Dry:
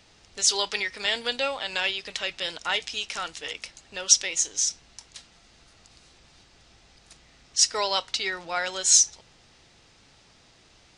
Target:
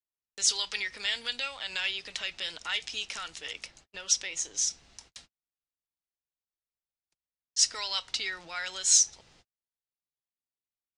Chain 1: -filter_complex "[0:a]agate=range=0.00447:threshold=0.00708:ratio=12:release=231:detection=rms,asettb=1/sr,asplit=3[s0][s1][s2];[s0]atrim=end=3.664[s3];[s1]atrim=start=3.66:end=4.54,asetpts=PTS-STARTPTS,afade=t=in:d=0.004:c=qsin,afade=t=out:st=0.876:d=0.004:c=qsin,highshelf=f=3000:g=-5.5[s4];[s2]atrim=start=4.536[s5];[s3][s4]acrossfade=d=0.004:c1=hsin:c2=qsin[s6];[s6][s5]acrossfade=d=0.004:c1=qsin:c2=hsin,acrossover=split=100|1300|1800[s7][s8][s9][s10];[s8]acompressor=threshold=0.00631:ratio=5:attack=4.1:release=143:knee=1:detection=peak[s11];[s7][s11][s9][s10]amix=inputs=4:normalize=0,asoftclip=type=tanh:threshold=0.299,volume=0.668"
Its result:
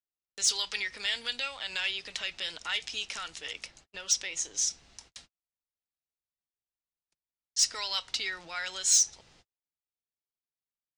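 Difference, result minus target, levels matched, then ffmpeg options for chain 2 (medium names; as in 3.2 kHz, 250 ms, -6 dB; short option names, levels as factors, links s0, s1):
saturation: distortion +18 dB
-filter_complex "[0:a]agate=range=0.00447:threshold=0.00708:ratio=12:release=231:detection=rms,asettb=1/sr,asplit=3[s0][s1][s2];[s0]atrim=end=3.664[s3];[s1]atrim=start=3.66:end=4.54,asetpts=PTS-STARTPTS,afade=t=in:d=0.004:c=qsin,afade=t=out:st=0.876:d=0.004:c=qsin,highshelf=f=3000:g=-5.5[s4];[s2]atrim=start=4.536[s5];[s3][s4]acrossfade=d=0.004:c1=hsin:c2=qsin[s6];[s6][s5]acrossfade=d=0.004:c1=qsin:c2=hsin,acrossover=split=100|1300|1800[s7][s8][s9][s10];[s8]acompressor=threshold=0.00631:ratio=5:attack=4.1:release=143:knee=1:detection=peak[s11];[s7][s11][s9][s10]amix=inputs=4:normalize=0,asoftclip=type=tanh:threshold=1,volume=0.668"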